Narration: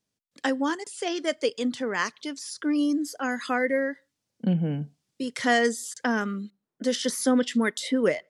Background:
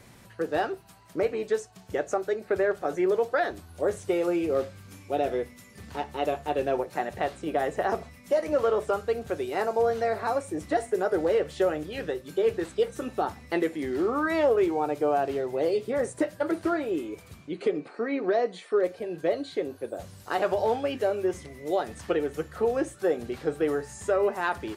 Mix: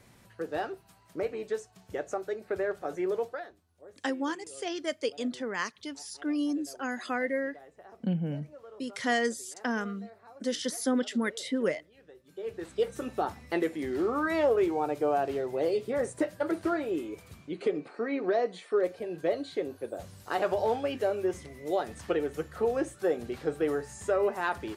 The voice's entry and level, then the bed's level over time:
3.60 s, −5.5 dB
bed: 0:03.24 −6 dB
0:03.60 −25 dB
0:12.02 −25 dB
0:12.83 −2.5 dB

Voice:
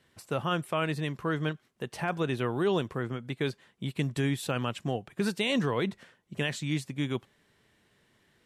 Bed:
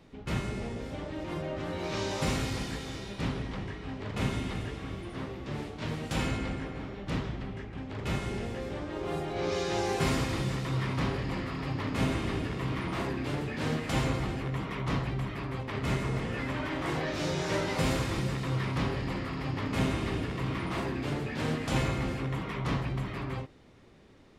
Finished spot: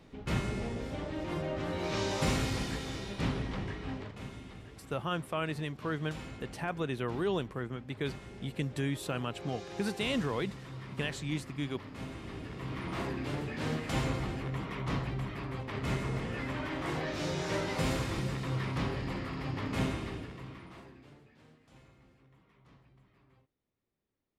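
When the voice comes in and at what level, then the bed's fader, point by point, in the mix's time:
4.60 s, −4.5 dB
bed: 0:03.97 0 dB
0:04.18 −13.5 dB
0:12.10 −13.5 dB
0:12.98 −3 dB
0:19.83 −3 dB
0:21.56 −30.5 dB

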